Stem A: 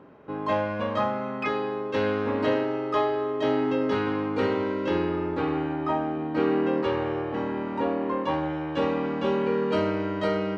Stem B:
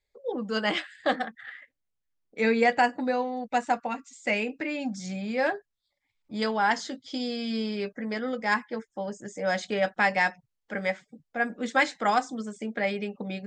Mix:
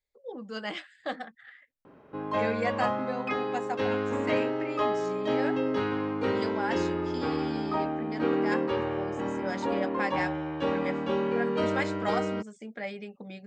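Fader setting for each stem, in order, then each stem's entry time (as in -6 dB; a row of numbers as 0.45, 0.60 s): -3.0, -8.5 dB; 1.85, 0.00 s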